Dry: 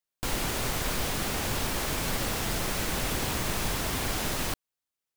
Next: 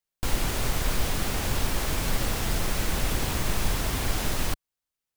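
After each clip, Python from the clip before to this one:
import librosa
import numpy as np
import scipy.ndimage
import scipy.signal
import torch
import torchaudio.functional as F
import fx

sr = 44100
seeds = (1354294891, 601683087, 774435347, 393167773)

y = fx.low_shelf(x, sr, hz=79.0, db=10.0)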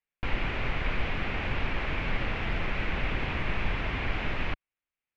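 y = fx.ladder_lowpass(x, sr, hz=2800.0, resonance_pct=50)
y = F.gain(torch.from_numpy(y), 6.0).numpy()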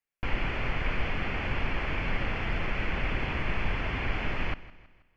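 y = fx.notch(x, sr, hz=3800.0, q=5.8)
y = fx.echo_feedback(y, sr, ms=161, feedback_pct=46, wet_db=-18.0)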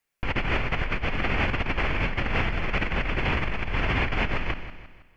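y = fx.over_compress(x, sr, threshold_db=-32.0, ratio=-1.0)
y = F.gain(torch.from_numpy(y), 6.5).numpy()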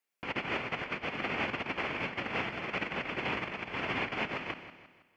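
y = scipy.signal.sosfilt(scipy.signal.butter(2, 200.0, 'highpass', fs=sr, output='sos'), x)
y = fx.peak_eq(y, sr, hz=1700.0, db=-2.5, octaves=0.41)
y = F.gain(torch.from_numpy(y), -5.5).numpy()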